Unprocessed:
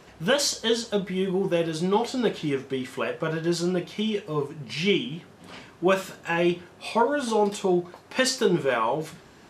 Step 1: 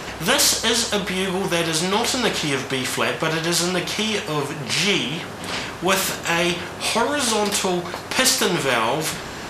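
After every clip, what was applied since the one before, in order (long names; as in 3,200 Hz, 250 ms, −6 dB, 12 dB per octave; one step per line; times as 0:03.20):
every bin compressed towards the loudest bin 2 to 1
level +7 dB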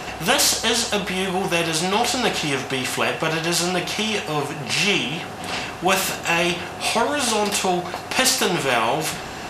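hollow resonant body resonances 740/2,700 Hz, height 9 dB, ringing for 40 ms
level −1 dB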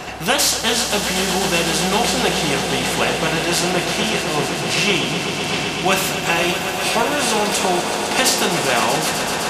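echo that builds up and dies away 127 ms, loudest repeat 5, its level −11 dB
level +1 dB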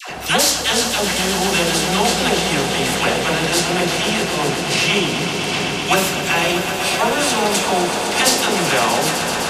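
all-pass dispersion lows, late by 97 ms, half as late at 730 Hz
level +1 dB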